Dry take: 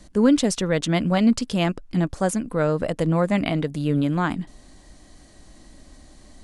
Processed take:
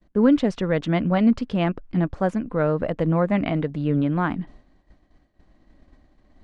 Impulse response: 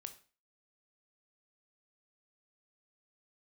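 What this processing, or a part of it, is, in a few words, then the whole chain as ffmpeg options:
hearing-loss simulation: -af "lowpass=2.3k,agate=range=-33dB:threshold=-39dB:ratio=3:detection=peak"

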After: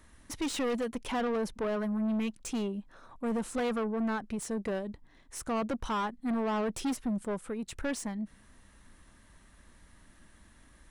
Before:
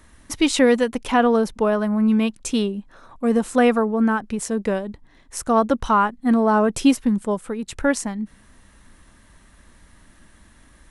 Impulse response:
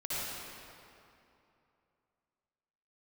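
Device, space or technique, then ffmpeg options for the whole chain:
saturation between pre-emphasis and de-emphasis: -af "highshelf=f=3.6k:g=9,asoftclip=type=tanh:threshold=-20.5dB,highshelf=f=3.6k:g=-9,volume=-7dB"

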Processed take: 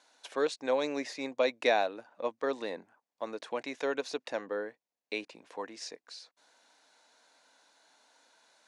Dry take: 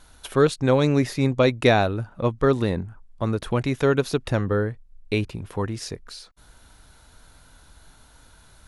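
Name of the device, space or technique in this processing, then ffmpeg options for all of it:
phone speaker on a table: -af "highpass=f=340:w=0.5412,highpass=f=340:w=1.3066,equalizer=f=380:t=q:w=4:g=-10,equalizer=f=1.3k:t=q:w=4:g=-8,equalizer=f=3.2k:t=q:w=4:g=-4,lowpass=f=7.5k:w=0.5412,lowpass=f=7.5k:w=1.3066,volume=-6dB"

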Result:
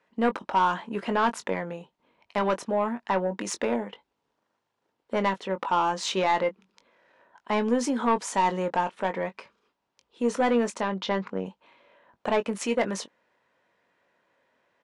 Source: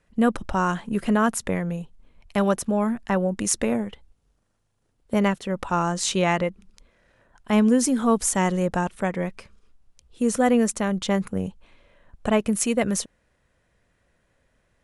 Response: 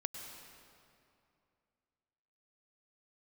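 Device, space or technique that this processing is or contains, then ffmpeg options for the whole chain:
intercom: -filter_complex "[0:a]highpass=310,lowpass=4.3k,equalizer=f=940:t=o:w=0.25:g=8,asoftclip=type=tanh:threshold=-15.5dB,asplit=2[a][b];[b]adelay=21,volume=-10dB[c];[a][c]amix=inputs=2:normalize=0,asettb=1/sr,asplit=3[d][e][f];[d]atrim=end=10.824[g];[e]atrim=start=10.82:end=11.46,asetpts=PTS-STARTPTS,afade=t=in:d=0.004:c=qsin,afade=t=out:st=0.636:d=0.004:c=qsin,lowpass=f=5.7k:w=0.5412,lowpass=f=5.7k:w=1.3066[h];[f]atrim=start=11.456[i];[g][h]acrossfade=d=0.004:c1=hsin:c2=qsin[j];[j][i]acrossfade=d=0.004:c1=qsin:c2=hsin"

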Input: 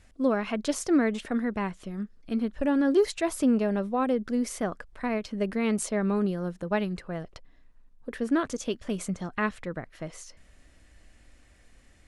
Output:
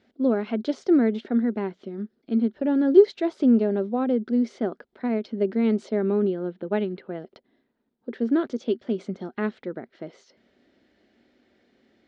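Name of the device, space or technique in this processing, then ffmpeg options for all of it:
kitchen radio: -filter_complex "[0:a]highpass=230,equalizer=f=230:t=q:w=4:g=9,equalizer=f=380:t=q:w=4:g=10,equalizer=f=1.1k:t=q:w=4:g=-9,equalizer=f=1.8k:t=q:w=4:g=-5,equalizer=f=2.6k:t=q:w=4:g=-8,lowpass=f=4.2k:w=0.5412,lowpass=f=4.2k:w=1.3066,asettb=1/sr,asplit=3[a][b][c];[a]atrim=end=6.004[d];[b]atrim=start=6:end=7.19,asetpts=PTS-STARTPTS,afade=t=in:d=0.004:c=qsin,afade=t=out:st=1.186:d=0.004:c=qsin,highshelf=f=4.7k:t=q:w=1.5:g=-13[e];[c]atrim=start=7.186[f];[d][e]acrossfade=d=0.004:c1=hsin:c2=qsin[g];[g][f]acrossfade=d=0.004:c1=qsin:c2=hsin"

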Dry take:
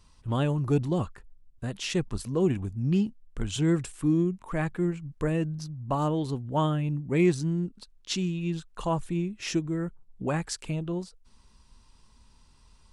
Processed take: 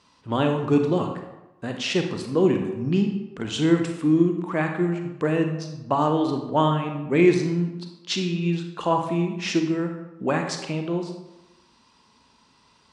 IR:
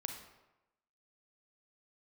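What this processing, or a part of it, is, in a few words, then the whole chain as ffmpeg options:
supermarket ceiling speaker: -filter_complex "[0:a]highpass=220,lowpass=5.2k[a];[1:a]atrim=start_sample=2205[b];[a][b]afir=irnorm=-1:irlink=0,volume=8.5dB"

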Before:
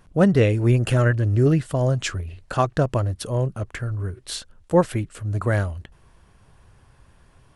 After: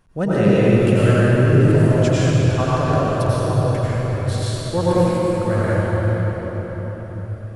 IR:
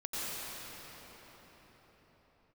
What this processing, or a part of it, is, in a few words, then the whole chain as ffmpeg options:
cathedral: -filter_complex "[1:a]atrim=start_sample=2205[a];[0:a][a]afir=irnorm=-1:irlink=0,volume=-1dB"

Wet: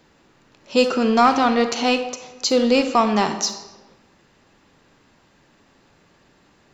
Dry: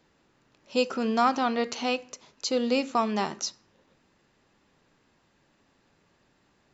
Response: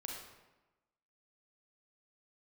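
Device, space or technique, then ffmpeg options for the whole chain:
saturated reverb return: -filter_complex "[0:a]asplit=2[a][b];[1:a]atrim=start_sample=2205[c];[b][c]afir=irnorm=-1:irlink=0,asoftclip=type=tanh:threshold=-25dB,volume=-0.5dB[d];[a][d]amix=inputs=2:normalize=0,volume=5.5dB"

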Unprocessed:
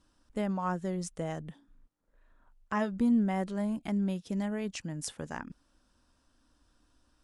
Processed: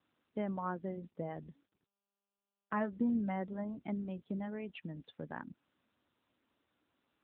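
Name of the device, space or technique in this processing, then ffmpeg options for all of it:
mobile call with aggressive noise cancelling: -filter_complex "[0:a]asettb=1/sr,asplit=3[a][b][c];[a]atrim=end=1.474[d];[b]atrim=start=1.47:end=3.65,asetpts=PTS-STARTPTS,afade=t=in:d=0.004:c=qsin,afade=t=out:st=2.176:d=0.004:c=qsin,agate=range=-24dB:threshold=-56dB:ratio=16:detection=peak[e];[c]atrim=start=3.646[f];[d][e]acrossfade=d=0.004:c1=hsin:c2=qsin[g];[g][f]acrossfade=d=0.004:c1=qsin:c2=hsin,highpass=100,afftdn=nr=14:nf=-43,volume=-3.5dB" -ar 8000 -c:a libopencore_amrnb -b:a 10200

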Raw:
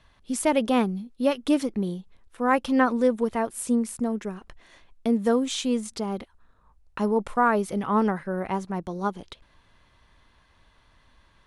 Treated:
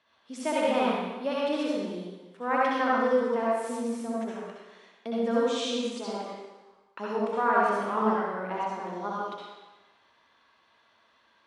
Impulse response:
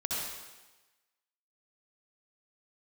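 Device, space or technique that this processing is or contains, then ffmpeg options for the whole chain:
supermarket ceiling speaker: -filter_complex "[0:a]highpass=330,lowpass=5.4k[a];[1:a]atrim=start_sample=2205[b];[a][b]afir=irnorm=-1:irlink=0,volume=-6dB"

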